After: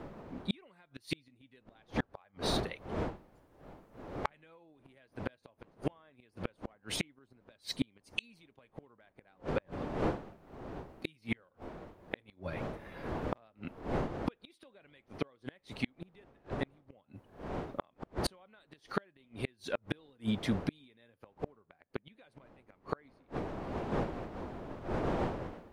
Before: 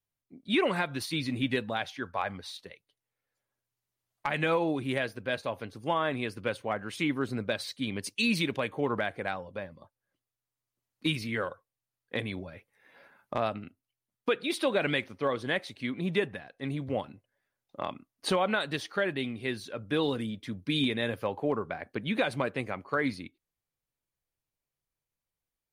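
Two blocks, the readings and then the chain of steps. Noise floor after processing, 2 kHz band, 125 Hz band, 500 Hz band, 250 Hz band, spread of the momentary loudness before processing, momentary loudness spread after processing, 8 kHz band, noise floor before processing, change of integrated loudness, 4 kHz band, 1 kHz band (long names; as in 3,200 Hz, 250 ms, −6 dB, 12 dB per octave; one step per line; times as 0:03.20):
−73 dBFS, −12.0 dB, −4.0 dB, −8.5 dB, −6.5 dB, 11 LU, 20 LU, −5.0 dB, below −85 dBFS, −8.0 dB, −9.0 dB, −7.5 dB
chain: wind on the microphone 570 Hz −42 dBFS
gate with flip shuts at −24 dBFS, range −38 dB
level +5.5 dB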